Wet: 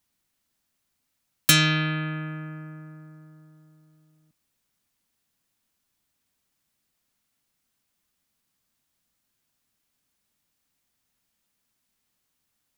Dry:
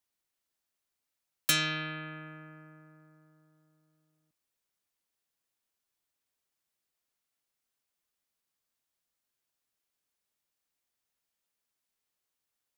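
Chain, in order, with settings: resonant low shelf 310 Hz +6 dB, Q 1.5; gain +8.5 dB

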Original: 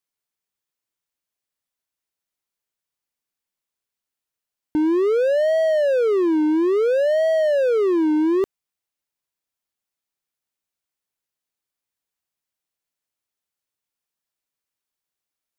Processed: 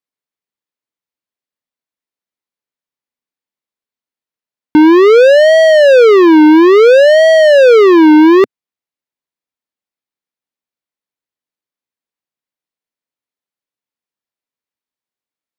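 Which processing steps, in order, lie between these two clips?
sample leveller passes 5; ten-band EQ 125 Hz +5 dB, 250 Hz +10 dB, 500 Hz +7 dB, 1000 Hz +6 dB, 2000 Hz +6 dB, 4000 Hz +5 dB

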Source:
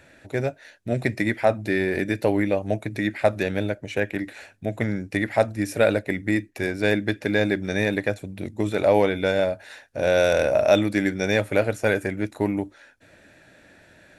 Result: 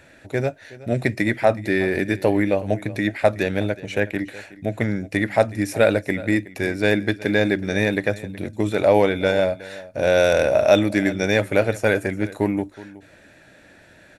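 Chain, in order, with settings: echo 0.37 s -18.5 dB; gain +2.5 dB

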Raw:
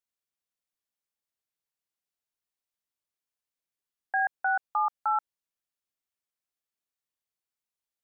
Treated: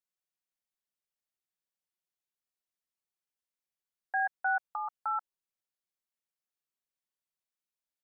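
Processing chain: comb 5.4 ms, depth 47%; gain -5.5 dB

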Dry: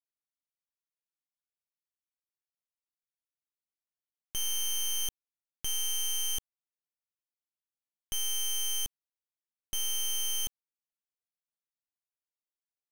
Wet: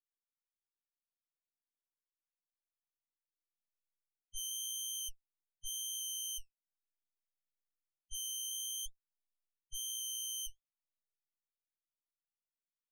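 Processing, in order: passive tone stack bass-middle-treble 6-0-2; spectral gate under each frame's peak -10 dB strong; flange 1 Hz, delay 3 ms, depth 9.1 ms, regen -57%; gain +12.5 dB

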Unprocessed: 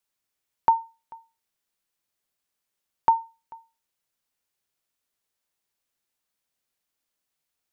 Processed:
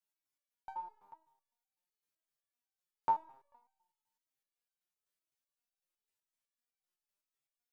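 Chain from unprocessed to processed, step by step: dynamic EQ 990 Hz, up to -3 dB, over -33 dBFS, Q 1.2; Schroeder reverb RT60 0.91 s, combs from 25 ms, DRR 10 dB; stepped resonator 7.9 Hz 100–770 Hz

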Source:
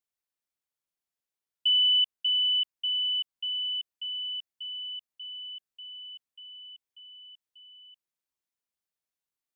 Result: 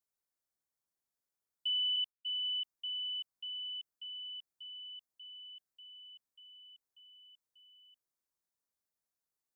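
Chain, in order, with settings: 1.96–2.44 expander -25 dBFS; bell 2800 Hz -11 dB 0.82 oct

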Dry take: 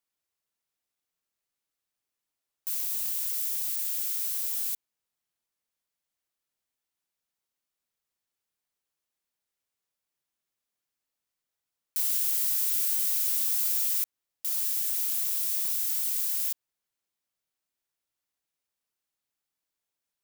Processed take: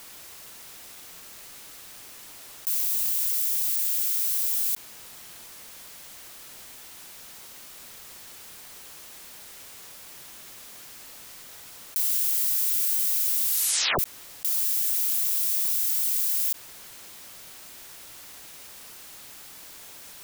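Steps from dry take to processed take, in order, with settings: 4.16–4.68 HPF 290 Hz 24 dB/oct; 13.44 tape stop 0.55 s; fast leveller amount 70%; gain +2 dB

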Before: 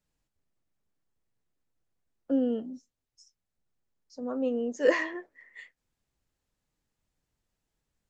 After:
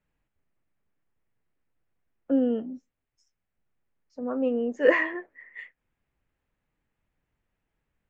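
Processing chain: resonant high shelf 3400 Hz -12.5 dB, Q 1.5; gain +3 dB

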